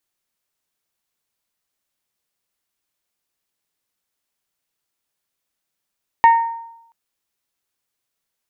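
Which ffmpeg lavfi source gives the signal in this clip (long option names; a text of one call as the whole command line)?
ffmpeg -f lavfi -i "aevalsrc='0.562*pow(10,-3*t/0.83)*sin(2*PI*921*t)+0.158*pow(10,-3*t/0.511)*sin(2*PI*1842*t)+0.0447*pow(10,-3*t/0.45)*sin(2*PI*2210.4*t)+0.0126*pow(10,-3*t/0.385)*sin(2*PI*2763*t)+0.00355*pow(10,-3*t/0.315)*sin(2*PI*3684*t)':duration=0.68:sample_rate=44100" out.wav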